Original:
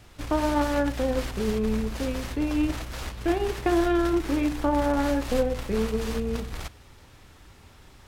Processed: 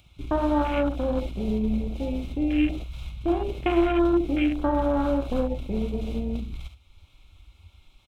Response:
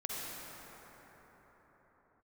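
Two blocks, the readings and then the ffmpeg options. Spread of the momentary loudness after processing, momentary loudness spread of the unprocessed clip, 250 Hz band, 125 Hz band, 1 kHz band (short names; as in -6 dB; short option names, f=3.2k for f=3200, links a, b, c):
9 LU, 7 LU, +1.5 dB, +0.5 dB, -0.5 dB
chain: -filter_complex "[0:a]acompressor=mode=upward:threshold=-41dB:ratio=2.5,superequalizer=7b=0.562:11b=0.316:12b=2.82:13b=3.16,asplit=2[a][b];[b]aecho=0:1:47|70:0.266|0.316[c];[a][c]amix=inputs=2:normalize=0,afwtdn=0.0355"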